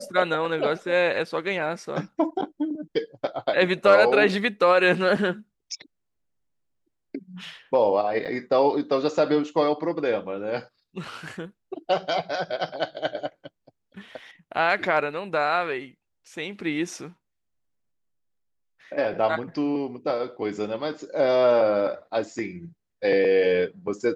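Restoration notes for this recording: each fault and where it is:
8.25–8.26 s: dropout 7.3 ms

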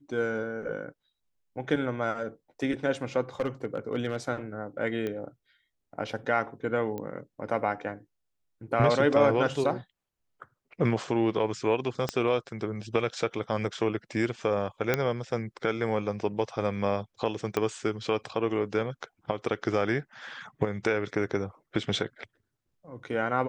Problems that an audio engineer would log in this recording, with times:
3.40–4.16 s: clipped -22 dBFS
5.07 s: pop -21 dBFS
6.98 s: pop -23 dBFS
12.09 s: pop -14 dBFS
14.94 s: pop -10 dBFS
17.57 s: pop -14 dBFS

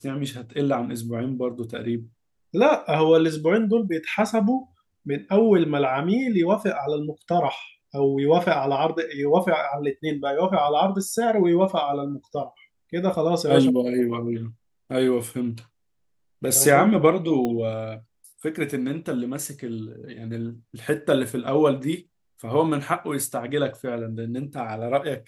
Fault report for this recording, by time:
17.45 s: pop -14 dBFS

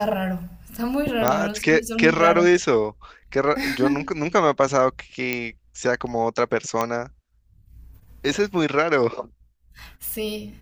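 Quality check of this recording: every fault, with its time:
1.28 s: pop -3 dBFS
5.33 s: pop -10 dBFS
6.81 s: pop -9 dBFS

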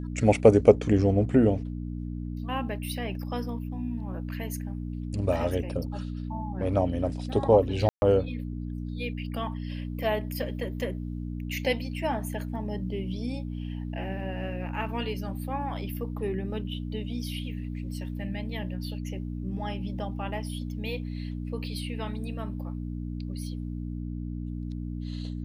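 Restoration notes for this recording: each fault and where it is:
hum 60 Hz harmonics 5 -34 dBFS
7.89–8.02 s: dropout 131 ms

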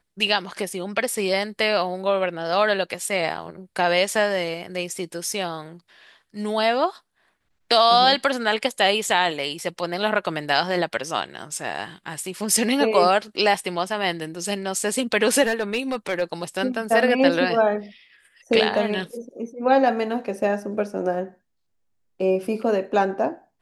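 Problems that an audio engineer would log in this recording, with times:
15.42–16.23 s: clipped -17 dBFS

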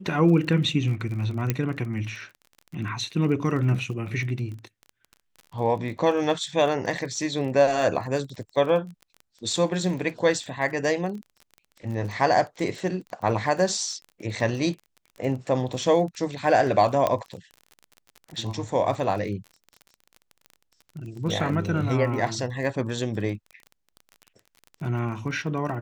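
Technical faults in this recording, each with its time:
crackle 28 per s -34 dBFS
1.50 s: pop -9 dBFS
17.07 s: pop -10 dBFS

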